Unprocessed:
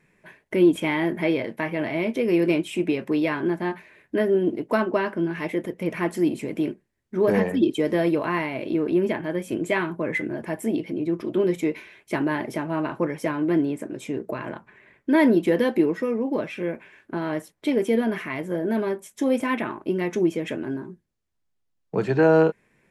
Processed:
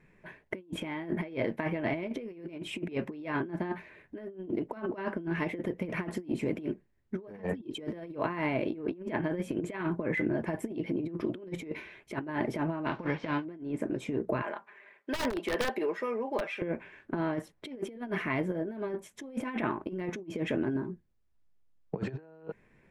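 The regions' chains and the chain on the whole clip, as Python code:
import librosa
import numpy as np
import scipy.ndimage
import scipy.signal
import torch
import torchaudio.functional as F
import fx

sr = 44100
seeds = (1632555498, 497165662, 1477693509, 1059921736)

y = fx.envelope_flatten(x, sr, power=0.6, at=(12.85, 13.44), fade=0.02)
y = fx.lowpass(y, sr, hz=4500.0, slope=24, at=(12.85, 13.44), fade=0.02)
y = fx.peak_eq(y, sr, hz=80.0, db=-4.0, octaves=1.5, at=(12.85, 13.44), fade=0.02)
y = fx.chain(y, sr, fx.highpass(hz=580.0, slope=12),
    fx.comb(ms=5.0, depth=0.4),
    fx.overflow_wrap(gain_db=19.0), at=(14.42, 16.62))
y = fx.lowpass(y, sr, hz=2600.0, slope=6)
y = fx.low_shelf(y, sr, hz=68.0, db=10.0)
y = fx.over_compress(y, sr, threshold_db=-28.0, ratio=-0.5)
y = y * 10.0 ** (-5.0 / 20.0)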